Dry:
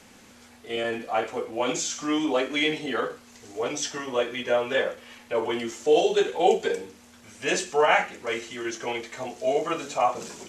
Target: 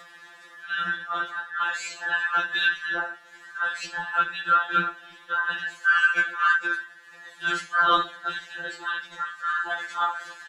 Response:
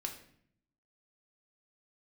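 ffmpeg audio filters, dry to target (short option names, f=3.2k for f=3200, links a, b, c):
-filter_complex "[0:a]afftfilt=real='real(if(between(b,1,1012),(2*floor((b-1)/92)+1)*92-b,b),0)':imag='imag(if(between(b,1,1012),(2*floor((b-1)/92)+1)*92-b,b),0)*if(between(b,1,1012),-1,1)':win_size=2048:overlap=0.75,acrusher=bits=11:mix=0:aa=0.000001,highpass=120,equalizer=f=510:t=o:w=2.4:g=-4,acompressor=mode=upward:threshold=-41dB:ratio=2.5,bass=f=250:g=-11,treble=f=4k:g=-14,asplit=2[a][b];[b]adelay=260,highpass=300,lowpass=3.4k,asoftclip=type=hard:threshold=-20dB,volume=-27dB[c];[a][c]amix=inputs=2:normalize=0,acontrast=58,afftfilt=real='hypot(re,im)*cos(2*PI*random(0))':imag='hypot(re,im)*sin(2*PI*random(1))':win_size=512:overlap=0.75,afftfilt=real='re*2.83*eq(mod(b,8),0)':imag='im*2.83*eq(mod(b,8),0)':win_size=2048:overlap=0.75,volume=4dB"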